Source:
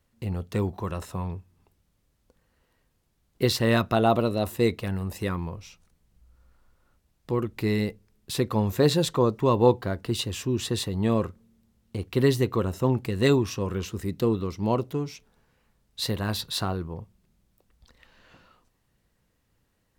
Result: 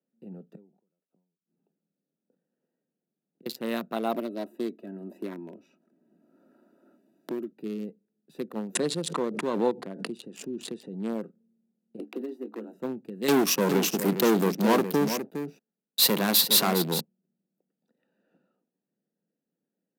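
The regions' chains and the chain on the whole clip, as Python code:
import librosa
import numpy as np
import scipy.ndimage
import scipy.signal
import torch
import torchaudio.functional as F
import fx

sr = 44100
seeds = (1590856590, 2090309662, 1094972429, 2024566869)

y = fx.chain(x, sr, fx.gate_flip(shuts_db=-30.0, range_db=-41),
    fx.sustainer(db_per_s=92.0), at=(0.55, 3.46))
y = fx.chain(y, sr, fx.comb(ms=3.1, depth=0.67),
    fx.band_squash(depth_pct=70), at=(4.14, 7.52))
y = fx.chain(y, sr, fx.brickwall_lowpass(high_hz=11000.0),
    fx.pre_swell(db_per_s=37.0), at=(8.75, 11.13))
y = fx.chain(y, sr, fx.cheby_ripple_highpass(hz=210.0, ripple_db=6),
    fx.doubler(ms=20.0, db=-6.0),
    fx.band_squash(depth_pct=100), at=(11.99, 12.73))
y = fx.chain(y, sr, fx.leveller(passes=5),
    fx.echo_single(ms=410, db=-8.0), at=(13.28, 17.01))
y = fx.wiener(y, sr, points=41)
y = scipy.signal.sosfilt(scipy.signal.butter(8, 170.0, 'highpass', fs=sr, output='sos'), y)
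y = fx.peak_eq(y, sr, hz=14000.0, db=13.5, octaves=0.85)
y = F.gain(torch.from_numpy(y), -6.5).numpy()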